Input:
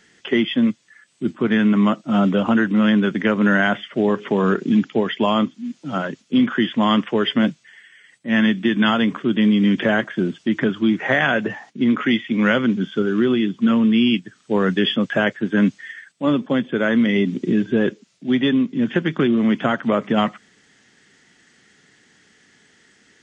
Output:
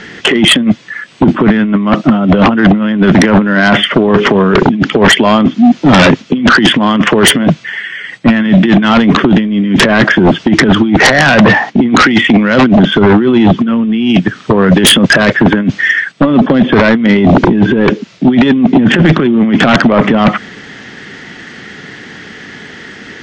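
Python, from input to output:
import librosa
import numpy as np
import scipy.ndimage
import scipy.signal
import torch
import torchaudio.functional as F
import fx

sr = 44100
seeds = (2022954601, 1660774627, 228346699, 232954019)

y = fx.air_absorb(x, sr, metres=180.0)
y = fx.over_compress(y, sr, threshold_db=-23.0, ratio=-0.5)
y = fx.fold_sine(y, sr, drive_db=13, ceiling_db=-6.0)
y = F.gain(torch.from_numpy(y), 4.5).numpy()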